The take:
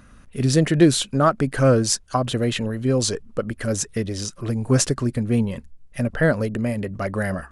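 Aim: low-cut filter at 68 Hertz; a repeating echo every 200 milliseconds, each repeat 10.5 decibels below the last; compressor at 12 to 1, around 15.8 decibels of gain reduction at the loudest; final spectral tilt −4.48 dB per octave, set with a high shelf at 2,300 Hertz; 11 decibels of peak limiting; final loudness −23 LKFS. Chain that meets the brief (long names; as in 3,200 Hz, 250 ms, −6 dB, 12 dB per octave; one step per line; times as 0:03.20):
high-pass filter 68 Hz
high-shelf EQ 2,300 Hz +8.5 dB
downward compressor 12 to 1, threshold −25 dBFS
brickwall limiter −20.5 dBFS
repeating echo 200 ms, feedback 30%, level −10.5 dB
level +8 dB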